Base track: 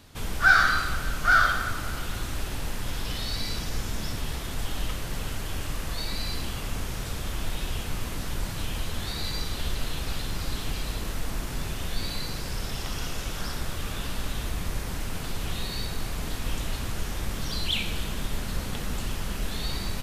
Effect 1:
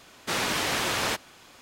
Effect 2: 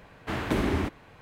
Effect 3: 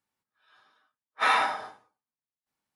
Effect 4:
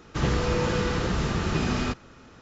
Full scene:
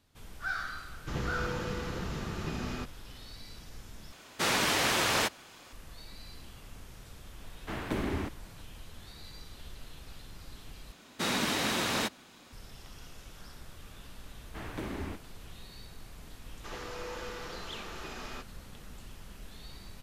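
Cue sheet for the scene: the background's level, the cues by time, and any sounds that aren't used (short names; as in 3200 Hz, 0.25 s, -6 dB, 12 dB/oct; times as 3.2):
base track -17 dB
0.92 add 4 -10.5 dB
4.12 replace with 1 -0.5 dB
7.4 add 2 -6.5 dB
10.92 replace with 1 -4.5 dB + small resonant body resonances 220/3800 Hz, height 9 dB, ringing for 25 ms
14.27 add 2 -7 dB + flange 1.9 Hz, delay 5.9 ms, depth 9.2 ms, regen -75%
16.49 add 4 -12 dB + HPF 440 Hz
not used: 3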